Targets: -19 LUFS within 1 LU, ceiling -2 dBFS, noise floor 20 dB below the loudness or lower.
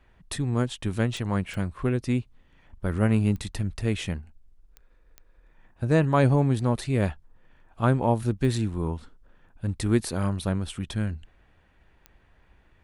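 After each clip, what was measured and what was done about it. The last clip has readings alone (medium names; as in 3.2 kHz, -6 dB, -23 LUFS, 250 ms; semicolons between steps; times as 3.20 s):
clicks found 7; loudness -26.5 LUFS; peak level -7.5 dBFS; loudness target -19.0 LUFS
-> de-click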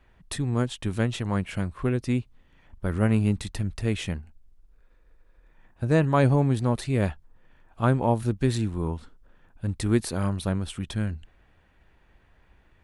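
clicks found 0; loudness -26.5 LUFS; peak level -7.5 dBFS; loudness target -19.0 LUFS
-> trim +7.5 dB; peak limiter -2 dBFS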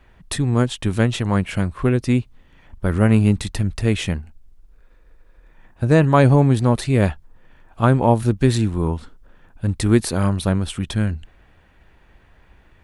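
loudness -19.5 LUFS; peak level -2.0 dBFS; noise floor -53 dBFS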